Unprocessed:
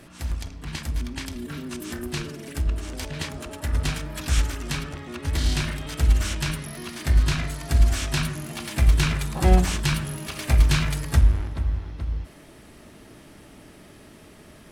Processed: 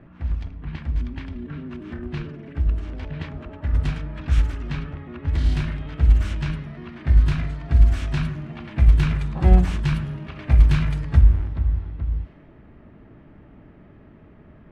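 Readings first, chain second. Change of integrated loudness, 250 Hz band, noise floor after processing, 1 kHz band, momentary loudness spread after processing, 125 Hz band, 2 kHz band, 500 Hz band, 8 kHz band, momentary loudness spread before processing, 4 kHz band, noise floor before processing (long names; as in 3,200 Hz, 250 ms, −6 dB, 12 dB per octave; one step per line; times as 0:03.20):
+3.0 dB, +1.0 dB, −48 dBFS, −3.5 dB, 16 LU, +3.5 dB, −5.0 dB, −2.5 dB, below −15 dB, 13 LU, −10.0 dB, −48 dBFS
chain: low-pass that shuts in the quiet parts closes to 1,800 Hz, open at −17.5 dBFS
bass and treble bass +7 dB, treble −14 dB
level −3.5 dB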